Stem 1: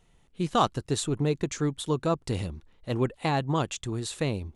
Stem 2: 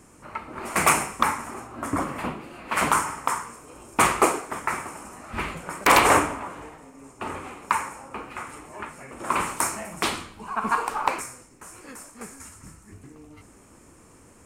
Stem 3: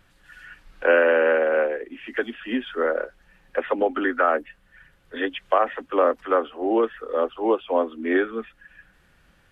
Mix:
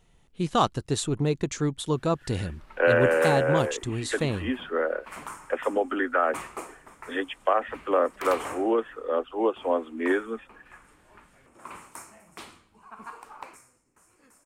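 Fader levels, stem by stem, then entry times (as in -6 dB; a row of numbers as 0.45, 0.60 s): +1.0, -18.0, -3.5 dB; 0.00, 2.35, 1.95 s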